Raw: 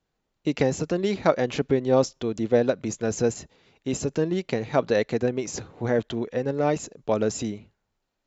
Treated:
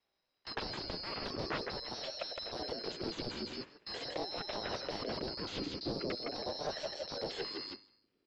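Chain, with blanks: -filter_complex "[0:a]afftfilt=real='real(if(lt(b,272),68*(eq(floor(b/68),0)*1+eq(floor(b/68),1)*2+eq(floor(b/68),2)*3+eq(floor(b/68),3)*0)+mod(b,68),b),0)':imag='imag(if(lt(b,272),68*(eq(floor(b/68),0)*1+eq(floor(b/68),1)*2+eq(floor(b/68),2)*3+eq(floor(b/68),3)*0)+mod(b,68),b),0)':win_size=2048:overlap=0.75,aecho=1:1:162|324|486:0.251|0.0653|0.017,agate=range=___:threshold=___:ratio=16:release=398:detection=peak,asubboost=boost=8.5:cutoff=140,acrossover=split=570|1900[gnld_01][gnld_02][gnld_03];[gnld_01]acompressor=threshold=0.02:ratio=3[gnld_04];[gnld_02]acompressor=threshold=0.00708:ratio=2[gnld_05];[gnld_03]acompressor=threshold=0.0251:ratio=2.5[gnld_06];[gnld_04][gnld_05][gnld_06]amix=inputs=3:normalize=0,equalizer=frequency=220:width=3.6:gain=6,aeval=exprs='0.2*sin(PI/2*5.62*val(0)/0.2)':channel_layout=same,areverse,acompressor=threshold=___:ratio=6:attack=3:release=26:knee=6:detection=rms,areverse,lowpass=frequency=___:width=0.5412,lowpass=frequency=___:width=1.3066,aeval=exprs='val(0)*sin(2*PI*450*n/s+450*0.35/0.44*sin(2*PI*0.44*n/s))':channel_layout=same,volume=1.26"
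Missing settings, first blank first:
0.141, 0.01, 0.0251, 3.5k, 3.5k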